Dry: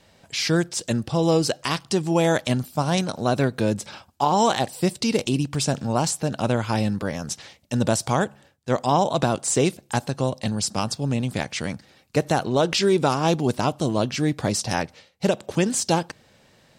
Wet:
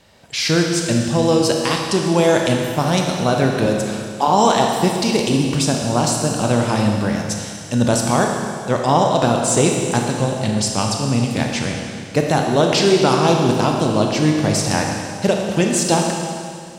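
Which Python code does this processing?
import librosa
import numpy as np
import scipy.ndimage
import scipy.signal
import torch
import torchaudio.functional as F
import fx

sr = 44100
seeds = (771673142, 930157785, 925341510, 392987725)

y = fx.highpass(x, sr, hz=190.0, slope=24, at=(3.66, 4.28))
y = fx.rev_schroeder(y, sr, rt60_s=2.3, comb_ms=26, drr_db=1.0)
y = y * librosa.db_to_amplitude(3.5)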